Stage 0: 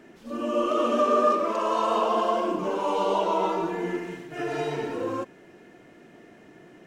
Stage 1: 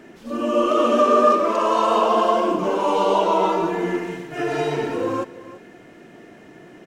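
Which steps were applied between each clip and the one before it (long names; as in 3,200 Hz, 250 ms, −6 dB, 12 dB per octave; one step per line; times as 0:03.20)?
single-tap delay 335 ms −17 dB
level +6 dB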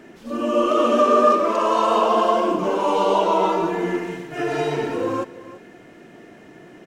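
no processing that can be heard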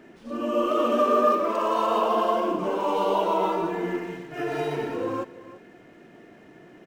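linearly interpolated sample-rate reduction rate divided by 3×
level −5 dB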